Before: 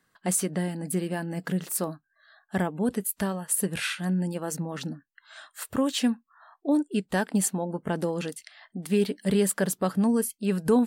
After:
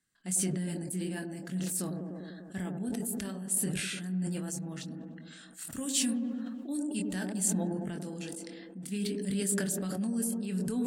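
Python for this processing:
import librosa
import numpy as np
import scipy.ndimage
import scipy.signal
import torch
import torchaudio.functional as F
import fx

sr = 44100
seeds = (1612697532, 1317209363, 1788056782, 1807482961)

y = fx.high_shelf(x, sr, hz=4700.0, db=fx.steps((0.0, -5.0), (5.7, 8.0), (6.98, -3.5)))
y = fx.echo_wet_bandpass(y, sr, ms=99, feedback_pct=72, hz=440.0, wet_db=-5.0)
y = fx.chorus_voices(y, sr, voices=6, hz=0.67, base_ms=24, depth_ms=3.6, mix_pct=30)
y = fx.graphic_eq(y, sr, hz=(500, 1000, 8000), db=(-9, -12, 10))
y = fx.sustainer(y, sr, db_per_s=22.0)
y = y * librosa.db_to_amplitude(-6.0)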